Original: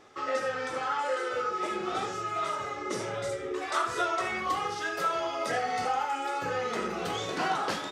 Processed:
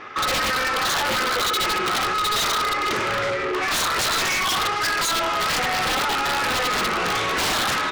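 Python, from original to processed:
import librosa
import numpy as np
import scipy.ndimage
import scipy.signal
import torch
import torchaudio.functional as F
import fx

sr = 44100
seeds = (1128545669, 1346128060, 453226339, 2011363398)

p1 = scipy.signal.sosfilt(scipy.signal.butter(4, 5400.0, 'lowpass', fs=sr, output='sos'), x)
p2 = fx.band_shelf(p1, sr, hz=1700.0, db=9.5, octaves=1.7)
p3 = fx.rider(p2, sr, range_db=4, speed_s=2.0)
p4 = p2 + (p3 * 10.0 ** (-2.0 / 20.0))
p5 = (np.mod(10.0 ** (14.5 / 20.0) * p4 + 1.0, 2.0) - 1.0) / 10.0 ** (14.5 / 20.0)
p6 = fx.quant_float(p5, sr, bits=6)
p7 = 10.0 ** (-27.5 / 20.0) * np.tanh(p6 / 10.0 ** (-27.5 / 20.0))
p8 = fx.doppler_dist(p7, sr, depth_ms=0.24)
y = p8 * 10.0 ** (7.0 / 20.0)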